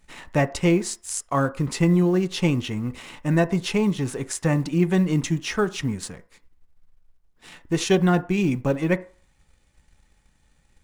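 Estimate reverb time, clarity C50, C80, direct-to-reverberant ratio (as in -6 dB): 0.45 s, 19.0 dB, 23.0 dB, 10.5 dB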